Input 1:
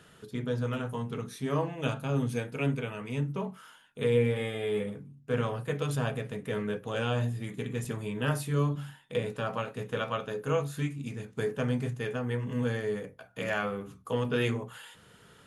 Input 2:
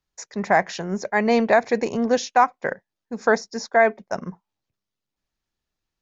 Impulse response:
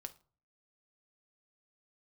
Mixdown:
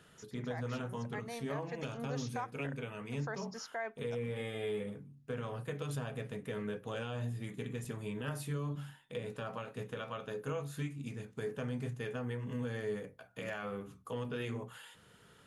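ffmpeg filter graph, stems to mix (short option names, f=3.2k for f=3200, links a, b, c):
-filter_complex "[0:a]volume=-5dB[a];[1:a]equalizer=f=180:w=0.35:g=-8,volume=-13dB,afade=t=in:st=1.65:d=0.31:silence=0.375837,asplit=2[b][c];[c]volume=-13.5dB[d];[2:a]atrim=start_sample=2205[e];[d][e]afir=irnorm=-1:irlink=0[f];[a][b][f]amix=inputs=3:normalize=0,alimiter=level_in=5dB:limit=-24dB:level=0:latency=1:release=155,volume=-5dB"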